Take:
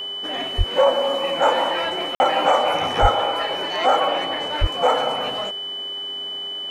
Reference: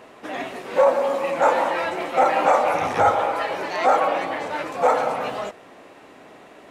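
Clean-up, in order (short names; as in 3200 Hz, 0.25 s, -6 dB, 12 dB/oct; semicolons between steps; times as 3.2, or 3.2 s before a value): de-hum 401.4 Hz, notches 38; notch 3000 Hz, Q 30; 0.57–0.69 HPF 140 Hz 24 dB/oct; 3.01–3.13 HPF 140 Hz 24 dB/oct; 4.6–4.72 HPF 140 Hz 24 dB/oct; interpolate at 2.15, 50 ms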